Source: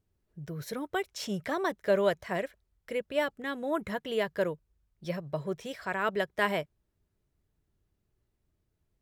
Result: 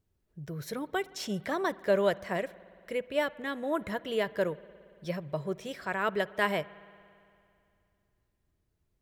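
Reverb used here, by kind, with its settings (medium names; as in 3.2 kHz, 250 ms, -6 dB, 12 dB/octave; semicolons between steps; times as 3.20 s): spring tank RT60 2.5 s, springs 56 ms, chirp 30 ms, DRR 19 dB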